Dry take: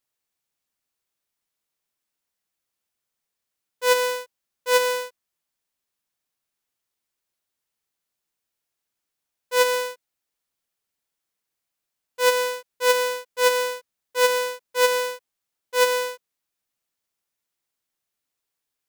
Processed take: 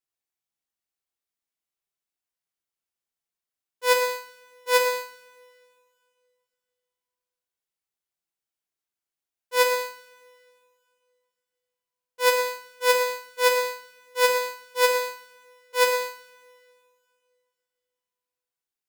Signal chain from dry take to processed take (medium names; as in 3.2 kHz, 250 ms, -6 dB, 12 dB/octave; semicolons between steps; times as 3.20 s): two-slope reverb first 0.6 s, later 2.6 s, from -18 dB, DRR 1.5 dB; upward expansion 1.5:1, over -32 dBFS; trim -1.5 dB